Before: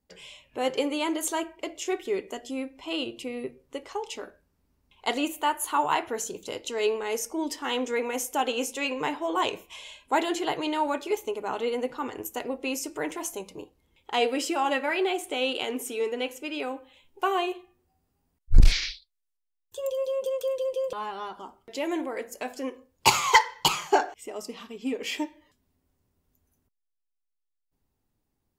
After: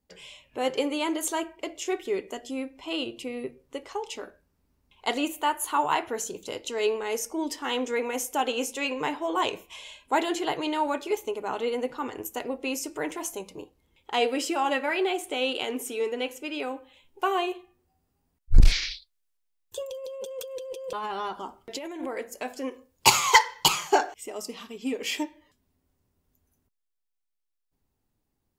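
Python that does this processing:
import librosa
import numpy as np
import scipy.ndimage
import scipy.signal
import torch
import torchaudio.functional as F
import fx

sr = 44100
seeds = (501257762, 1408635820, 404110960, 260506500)

y = fx.over_compress(x, sr, threshold_db=-35.0, ratio=-1.0, at=(18.91, 22.08))
y = fx.high_shelf(y, sr, hz=4100.0, db=5.5, at=(22.71, 25.23))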